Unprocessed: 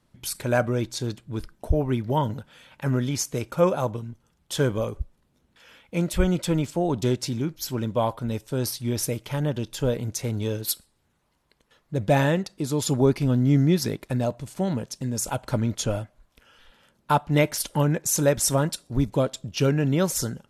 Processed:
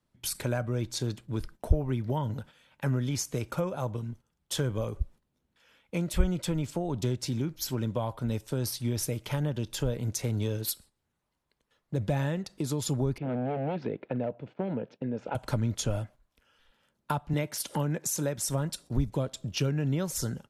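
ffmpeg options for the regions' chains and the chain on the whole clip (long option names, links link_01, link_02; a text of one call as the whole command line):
ffmpeg -i in.wav -filter_complex "[0:a]asettb=1/sr,asplit=3[link_01][link_02][link_03];[link_01]atrim=end=13.184[link_04];[link_02]atrim=start=13.18:end=15.35,asetpts=PTS-STARTPTS,afade=type=in:duration=0.004:curve=qsin,afade=type=out:start_time=2.166:duration=0.004:curve=qsin,aeval=exprs='0.119*(abs(mod(val(0)/0.119+3,4)-2)-1)':channel_layout=same,highpass=190,equalizer=frequency=480:width_type=q:width=4:gain=6,equalizer=frequency=1100:width_type=q:width=4:gain=-8,equalizer=frequency=1900:width_type=q:width=4:gain=-6,lowpass=frequency=2500:width=0.5412,lowpass=frequency=2500:width=1.3066[link_05];[link_03]atrim=start=15.346[link_06];[link_04][link_05]acrossfade=duration=0.004:curve1=hsin:curve2=qsin[link_07];[link_07][link_06]acrossfade=duration=0.004:curve1=qsin:curve2=hsin,asettb=1/sr,asplit=3[link_08][link_09][link_10];[link_08]atrim=end=17.334[link_11];[link_09]atrim=start=17.33:end=18.49,asetpts=PTS-STARTPTS,afade=type=in:duration=0.004:curve=qsin,afade=type=out:start_time=1.156:duration=0.004:curve=qsin,highpass=140,acompressor=mode=upward:threshold=-28dB:ratio=2.5:attack=3.2:release=140:knee=2.83:detection=peak[link_12];[link_10]atrim=start=18.486[link_13];[link_11][link_12]acrossfade=duration=0.004:curve1=hsin:curve2=qsin[link_14];[link_14][link_13]acrossfade=duration=0.004:curve1=qsin:curve2=hsin,agate=range=-11dB:threshold=-45dB:ratio=16:detection=peak,acrossover=split=120[link_15][link_16];[link_16]acompressor=threshold=-29dB:ratio=6[link_17];[link_15][link_17]amix=inputs=2:normalize=0" out.wav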